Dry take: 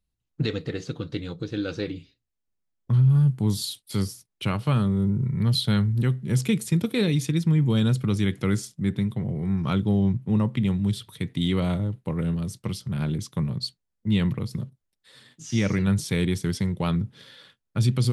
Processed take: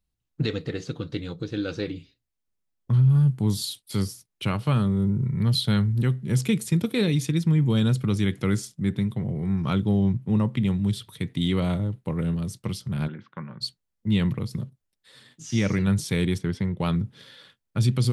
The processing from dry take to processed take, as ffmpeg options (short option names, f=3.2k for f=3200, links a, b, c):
-filter_complex "[0:a]asplit=3[a][b][c];[a]afade=t=out:st=13.07:d=0.02[d];[b]highpass=300,equalizer=f=300:t=q:w=4:g=-6,equalizer=f=430:t=q:w=4:g=-10,equalizer=f=680:t=q:w=4:g=-5,equalizer=f=1.5k:t=q:w=4:g=9,lowpass=f=2.3k:w=0.5412,lowpass=f=2.3k:w=1.3066,afade=t=in:st=13.07:d=0.02,afade=t=out:st=13.6:d=0.02[e];[c]afade=t=in:st=13.6:d=0.02[f];[d][e][f]amix=inputs=3:normalize=0,asplit=3[g][h][i];[g]afade=t=out:st=16.37:d=0.02[j];[h]bass=f=250:g=-1,treble=f=4k:g=-15,afade=t=in:st=16.37:d=0.02,afade=t=out:st=16.79:d=0.02[k];[i]afade=t=in:st=16.79:d=0.02[l];[j][k][l]amix=inputs=3:normalize=0"